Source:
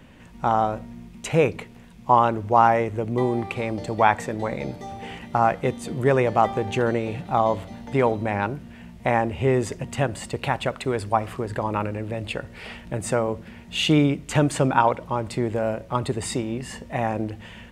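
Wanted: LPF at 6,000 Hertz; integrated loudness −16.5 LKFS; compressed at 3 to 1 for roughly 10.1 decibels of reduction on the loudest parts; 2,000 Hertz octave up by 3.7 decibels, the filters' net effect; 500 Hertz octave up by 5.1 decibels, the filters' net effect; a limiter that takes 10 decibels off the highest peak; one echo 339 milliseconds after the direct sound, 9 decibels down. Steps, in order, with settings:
low-pass filter 6,000 Hz
parametric band 500 Hz +6 dB
parametric band 2,000 Hz +4.5 dB
downward compressor 3 to 1, threshold −22 dBFS
brickwall limiter −16.5 dBFS
single-tap delay 339 ms −9 dB
level +12.5 dB

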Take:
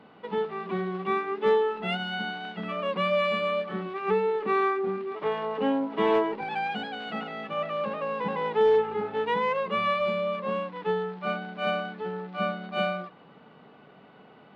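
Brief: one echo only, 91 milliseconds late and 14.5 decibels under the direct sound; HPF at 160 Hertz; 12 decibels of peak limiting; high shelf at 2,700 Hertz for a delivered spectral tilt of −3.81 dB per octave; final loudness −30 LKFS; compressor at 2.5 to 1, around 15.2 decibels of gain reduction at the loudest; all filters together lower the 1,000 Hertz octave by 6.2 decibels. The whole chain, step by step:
high-pass filter 160 Hz
parametric band 1,000 Hz −6.5 dB
high-shelf EQ 2,700 Hz −7.5 dB
downward compressor 2.5 to 1, threshold −44 dBFS
brickwall limiter −40.5 dBFS
single-tap delay 91 ms −14.5 dB
level +18 dB

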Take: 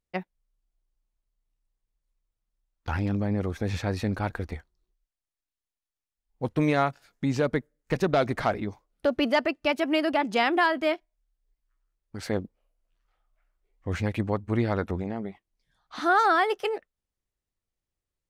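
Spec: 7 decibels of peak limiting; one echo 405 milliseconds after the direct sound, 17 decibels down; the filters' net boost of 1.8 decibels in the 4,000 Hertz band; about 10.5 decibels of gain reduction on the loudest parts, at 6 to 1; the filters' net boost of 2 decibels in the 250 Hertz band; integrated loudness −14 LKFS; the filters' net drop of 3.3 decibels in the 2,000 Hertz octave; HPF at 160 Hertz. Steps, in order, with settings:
high-pass filter 160 Hz
parametric band 250 Hz +3.5 dB
parametric band 2,000 Hz −5.5 dB
parametric band 4,000 Hz +5 dB
downward compressor 6 to 1, threshold −30 dBFS
brickwall limiter −25 dBFS
single-tap delay 405 ms −17 dB
level +23 dB

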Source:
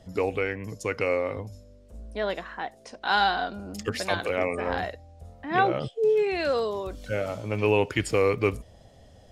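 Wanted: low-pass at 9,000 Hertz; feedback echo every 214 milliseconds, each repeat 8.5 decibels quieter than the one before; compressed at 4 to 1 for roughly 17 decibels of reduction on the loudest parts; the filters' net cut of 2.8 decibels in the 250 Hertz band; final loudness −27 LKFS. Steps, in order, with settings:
low-pass filter 9,000 Hz
parametric band 250 Hz −4 dB
downward compressor 4 to 1, threshold −40 dBFS
repeating echo 214 ms, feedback 38%, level −8.5 dB
level +14.5 dB

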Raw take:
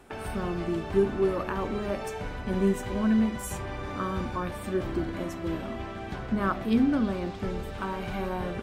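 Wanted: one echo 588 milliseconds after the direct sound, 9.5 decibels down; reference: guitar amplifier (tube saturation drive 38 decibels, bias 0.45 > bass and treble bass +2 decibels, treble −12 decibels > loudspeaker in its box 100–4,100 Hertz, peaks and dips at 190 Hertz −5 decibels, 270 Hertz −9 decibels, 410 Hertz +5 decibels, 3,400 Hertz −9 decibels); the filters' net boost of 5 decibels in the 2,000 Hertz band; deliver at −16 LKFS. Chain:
parametric band 2,000 Hz +8 dB
single-tap delay 588 ms −9.5 dB
tube saturation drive 38 dB, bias 0.45
bass and treble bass +2 dB, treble −12 dB
loudspeaker in its box 100–4,100 Hz, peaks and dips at 190 Hz −5 dB, 270 Hz −9 dB, 410 Hz +5 dB, 3,400 Hz −9 dB
level +25 dB

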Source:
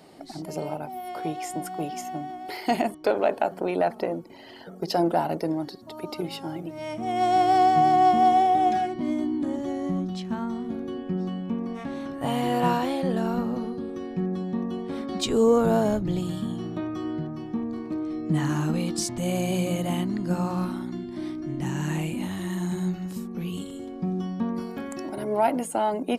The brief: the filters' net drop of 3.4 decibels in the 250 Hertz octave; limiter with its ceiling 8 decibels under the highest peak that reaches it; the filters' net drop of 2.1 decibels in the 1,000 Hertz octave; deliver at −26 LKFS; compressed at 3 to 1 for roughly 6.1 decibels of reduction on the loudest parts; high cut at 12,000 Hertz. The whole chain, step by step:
low-pass filter 12,000 Hz
parametric band 250 Hz −4.5 dB
parametric band 1,000 Hz −3 dB
downward compressor 3 to 1, threshold −26 dBFS
level +7.5 dB
brickwall limiter −16 dBFS

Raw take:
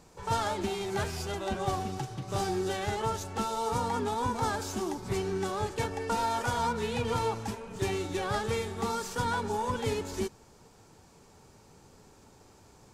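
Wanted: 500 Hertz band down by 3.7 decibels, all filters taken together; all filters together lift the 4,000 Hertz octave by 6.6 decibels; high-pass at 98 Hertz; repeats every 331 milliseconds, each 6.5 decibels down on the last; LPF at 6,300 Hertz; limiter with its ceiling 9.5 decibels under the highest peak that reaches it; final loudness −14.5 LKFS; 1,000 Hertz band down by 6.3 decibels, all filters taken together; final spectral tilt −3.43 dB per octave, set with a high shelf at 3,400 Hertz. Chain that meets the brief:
high-pass filter 98 Hz
low-pass filter 6,300 Hz
parametric band 500 Hz −3.5 dB
parametric band 1,000 Hz −7.5 dB
high-shelf EQ 3,400 Hz +7 dB
parametric band 4,000 Hz +4.5 dB
brickwall limiter −28.5 dBFS
repeating echo 331 ms, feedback 47%, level −6.5 dB
level +21.5 dB

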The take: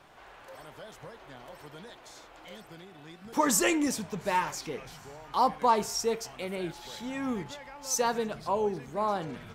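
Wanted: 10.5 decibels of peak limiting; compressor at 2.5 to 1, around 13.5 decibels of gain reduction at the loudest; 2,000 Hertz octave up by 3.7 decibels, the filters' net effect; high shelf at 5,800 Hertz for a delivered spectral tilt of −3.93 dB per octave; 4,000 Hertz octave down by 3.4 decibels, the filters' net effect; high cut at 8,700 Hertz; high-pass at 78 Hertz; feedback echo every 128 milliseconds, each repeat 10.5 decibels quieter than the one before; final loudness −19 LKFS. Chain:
high-pass filter 78 Hz
low-pass filter 8,700 Hz
parametric band 2,000 Hz +6 dB
parametric band 4,000 Hz −3 dB
high-shelf EQ 5,800 Hz −8 dB
downward compressor 2.5 to 1, threshold −40 dBFS
brickwall limiter −34 dBFS
repeating echo 128 ms, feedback 30%, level −10.5 dB
level +25 dB

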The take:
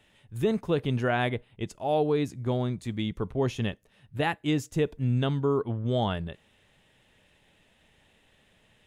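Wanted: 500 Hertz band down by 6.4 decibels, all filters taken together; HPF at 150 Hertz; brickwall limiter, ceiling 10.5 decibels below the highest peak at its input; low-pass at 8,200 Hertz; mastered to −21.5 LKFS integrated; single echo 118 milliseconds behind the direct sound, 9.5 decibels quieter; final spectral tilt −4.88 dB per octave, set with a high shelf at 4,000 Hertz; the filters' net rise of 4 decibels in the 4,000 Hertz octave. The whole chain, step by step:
high-pass filter 150 Hz
low-pass filter 8,200 Hz
parametric band 500 Hz −8 dB
high-shelf EQ 4,000 Hz −4 dB
parametric band 4,000 Hz +7.5 dB
brickwall limiter −24.5 dBFS
single-tap delay 118 ms −9.5 dB
level +13.5 dB

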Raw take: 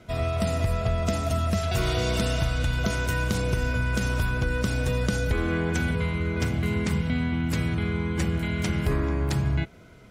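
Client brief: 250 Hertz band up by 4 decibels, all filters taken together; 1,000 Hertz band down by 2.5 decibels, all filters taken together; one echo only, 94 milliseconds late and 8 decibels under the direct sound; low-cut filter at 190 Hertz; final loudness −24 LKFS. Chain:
high-pass filter 190 Hz
parametric band 250 Hz +8 dB
parametric band 1,000 Hz −4 dB
single-tap delay 94 ms −8 dB
level +2.5 dB

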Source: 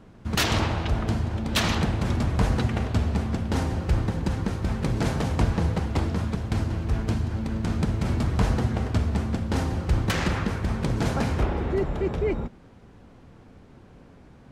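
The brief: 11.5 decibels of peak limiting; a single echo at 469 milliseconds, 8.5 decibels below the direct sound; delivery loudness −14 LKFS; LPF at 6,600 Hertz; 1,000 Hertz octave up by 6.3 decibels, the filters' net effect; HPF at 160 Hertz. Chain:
high-pass filter 160 Hz
low-pass filter 6,600 Hz
parametric band 1,000 Hz +8 dB
brickwall limiter −20 dBFS
single-tap delay 469 ms −8.5 dB
level +16 dB

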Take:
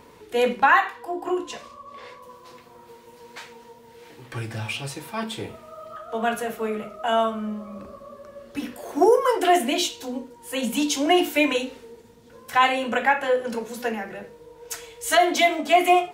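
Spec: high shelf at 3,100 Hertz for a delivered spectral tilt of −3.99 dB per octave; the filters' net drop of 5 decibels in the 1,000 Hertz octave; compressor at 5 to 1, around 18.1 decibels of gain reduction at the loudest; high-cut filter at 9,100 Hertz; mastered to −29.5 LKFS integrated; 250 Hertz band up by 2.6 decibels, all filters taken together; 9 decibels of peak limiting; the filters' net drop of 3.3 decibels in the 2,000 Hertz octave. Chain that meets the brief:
low-pass filter 9,100 Hz
parametric band 250 Hz +4 dB
parametric band 1,000 Hz −8 dB
parametric band 2,000 Hz −3.5 dB
high-shelf EQ 3,100 Hz +5 dB
downward compressor 5 to 1, threshold −34 dBFS
level +10 dB
brickwall limiter −19 dBFS

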